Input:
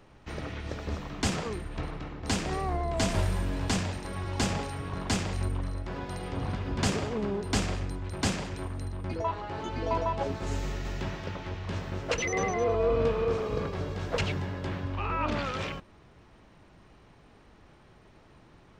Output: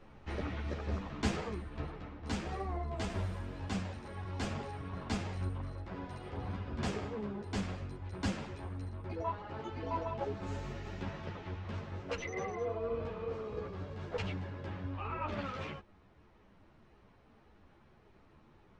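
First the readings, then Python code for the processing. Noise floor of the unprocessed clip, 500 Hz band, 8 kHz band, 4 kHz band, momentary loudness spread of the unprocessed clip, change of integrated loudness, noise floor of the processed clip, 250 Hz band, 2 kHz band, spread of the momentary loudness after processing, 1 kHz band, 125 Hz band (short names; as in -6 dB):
-57 dBFS, -9.0 dB, -15.0 dB, -11.0 dB, 9 LU, -8.0 dB, -63 dBFS, -6.5 dB, -9.0 dB, 6 LU, -7.5 dB, -7.0 dB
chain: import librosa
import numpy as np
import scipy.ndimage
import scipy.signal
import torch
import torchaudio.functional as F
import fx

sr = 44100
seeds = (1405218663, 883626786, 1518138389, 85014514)

y = fx.lowpass(x, sr, hz=2900.0, slope=6)
y = fx.rider(y, sr, range_db=10, speed_s=2.0)
y = fx.ensemble(y, sr)
y = y * 10.0 ** (-5.0 / 20.0)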